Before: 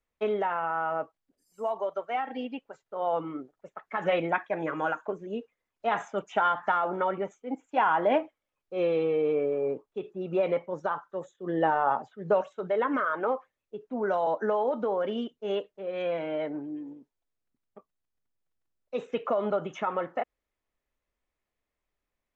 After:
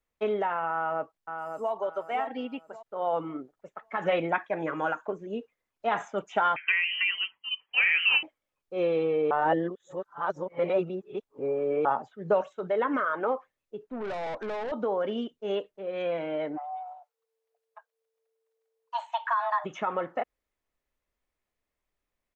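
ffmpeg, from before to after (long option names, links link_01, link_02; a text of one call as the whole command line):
ffmpeg -i in.wav -filter_complex "[0:a]asplit=2[link_01][link_02];[link_02]afade=type=in:start_time=0.72:duration=0.01,afade=type=out:start_time=1.72:duration=0.01,aecho=0:1:550|1100|1650|2200:0.473151|0.141945|0.0425836|0.0127751[link_03];[link_01][link_03]amix=inputs=2:normalize=0,asettb=1/sr,asplit=3[link_04][link_05][link_06];[link_04]atrim=end=6.564[link_07];[link_05]atrim=start=6.56:end=8.23,asetpts=PTS-STARTPTS,afade=type=in:duration=0.004:curve=qsin,afade=type=out:start_time=1.666:duration=0.004:curve=qsin,lowpass=frequency=2800:width_type=q:width=0.5098,lowpass=frequency=2800:width_type=q:width=0.6013,lowpass=frequency=2800:width_type=q:width=0.9,lowpass=frequency=2800:width_type=q:width=2.563,afreqshift=-3300[link_08];[link_06]atrim=start=8.226[link_09];[link_07][link_08]acrossfade=duration=0.004:curve1=hsin:curve2=qsin[link_10];[link_10][link_09]acrossfade=duration=0.004:curve1=qsin:curve2=hsin,asettb=1/sr,asplit=3[link_11][link_12][link_13];[link_11]atrim=end=13.834[link_14];[link_12]atrim=start=13.83:end=14.72,asetpts=PTS-STARTPTS,afade=type=in:duration=0.004:curve=qsin,afade=type=out:start_time=0.886:duration=0.004:curve=qsin,aeval=exprs='(tanh(35.5*val(0)+0.35)-tanh(0.35))/35.5':channel_layout=same[link_15];[link_13]atrim=start=14.716[link_16];[link_14][link_15]acrossfade=duration=0.004:curve1=hsin:curve2=qsin[link_17];[link_17][link_16]acrossfade=duration=0.004:curve1=qsin:curve2=hsin,asplit=3[link_18][link_19][link_20];[link_18]afade=type=out:start_time=16.56:duration=0.02[link_21];[link_19]afreqshift=450,afade=type=in:start_time=16.56:duration=0.02,afade=type=out:start_time=19.64:duration=0.02[link_22];[link_20]afade=type=in:start_time=19.64:duration=0.02[link_23];[link_21][link_22][link_23]amix=inputs=3:normalize=0,asplit=3[link_24][link_25][link_26];[link_24]atrim=end=9.312[link_27];[link_25]atrim=start=9.308:end=11.852,asetpts=PTS-STARTPTS,areverse[link_28];[link_26]atrim=start=11.848[link_29];[link_27][link_28]acrossfade=duration=0.004:curve1=hsin:curve2=hsin[link_30];[link_30][link_29]acrossfade=duration=0.004:curve1=hsin:curve2=hsin" out.wav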